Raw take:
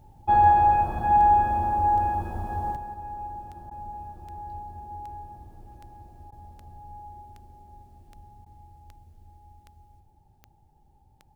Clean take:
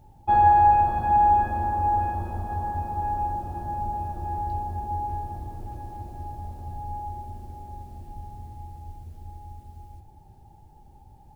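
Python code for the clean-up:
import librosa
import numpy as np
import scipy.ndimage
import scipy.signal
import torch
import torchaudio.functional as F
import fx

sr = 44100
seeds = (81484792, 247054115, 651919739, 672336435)

y = fx.fix_declick_ar(x, sr, threshold=10.0)
y = fx.fix_interpolate(y, sr, at_s=(3.7, 6.31, 8.45), length_ms=10.0)
y = fx.fix_echo_inverse(y, sr, delay_ms=179, level_db=-10.5)
y = fx.gain(y, sr, db=fx.steps((0.0, 0.0), (2.76, 10.0)))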